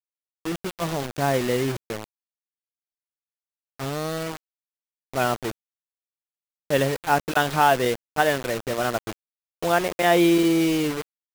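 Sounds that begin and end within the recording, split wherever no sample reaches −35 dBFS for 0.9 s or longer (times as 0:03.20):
0:03.80–0:05.51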